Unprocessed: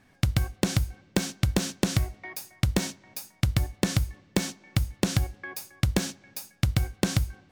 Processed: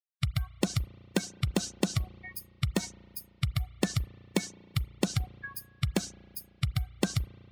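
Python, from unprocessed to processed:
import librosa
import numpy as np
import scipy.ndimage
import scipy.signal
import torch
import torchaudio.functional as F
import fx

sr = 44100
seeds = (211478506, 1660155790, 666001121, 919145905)

y = fx.bin_expand(x, sr, power=3.0)
y = fx.low_shelf(y, sr, hz=99.0, db=-7.5)
y = fx.rev_spring(y, sr, rt60_s=2.8, pass_ms=(34,), chirp_ms=55, drr_db=19.0)
y = y * librosa.db_to_amplitude(1.5)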